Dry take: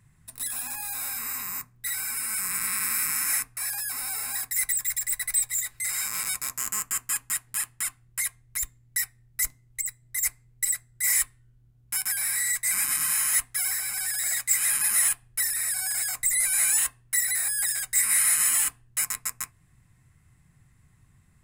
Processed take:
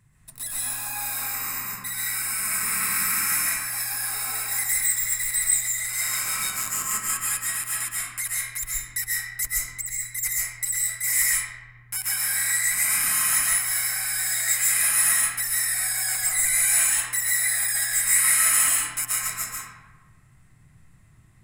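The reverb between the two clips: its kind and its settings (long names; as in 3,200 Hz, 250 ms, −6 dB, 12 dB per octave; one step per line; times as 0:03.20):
comb and all-pass reverb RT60 1.3 s, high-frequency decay 0.55×, pre-delay 95 ms, DRR −6 dB
level −1.5 dB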